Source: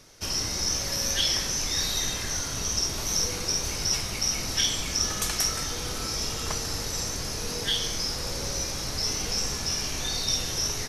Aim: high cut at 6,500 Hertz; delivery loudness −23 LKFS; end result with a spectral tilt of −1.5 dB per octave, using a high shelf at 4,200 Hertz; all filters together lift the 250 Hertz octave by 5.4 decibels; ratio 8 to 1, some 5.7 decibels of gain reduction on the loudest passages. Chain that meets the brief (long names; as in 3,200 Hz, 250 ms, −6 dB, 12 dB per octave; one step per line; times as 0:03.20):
low-pass filter 6,500 Hz
parametric band 250 Hz +7 dB
high-shelf EQ 4,200 Hz +7.5 dB
downward compressor 8 to 1, threshold −24 dBFS
level +3.5 dB